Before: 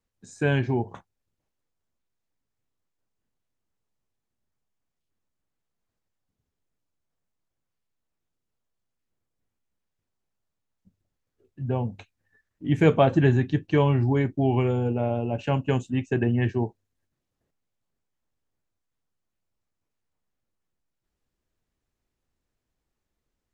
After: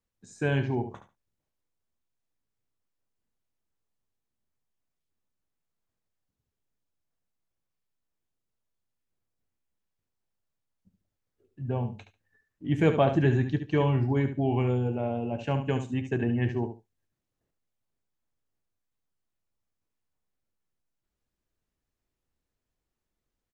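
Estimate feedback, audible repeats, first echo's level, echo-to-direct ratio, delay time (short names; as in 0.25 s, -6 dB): 17%, 2, -9.5 dB, -9.5 dB, 72 ms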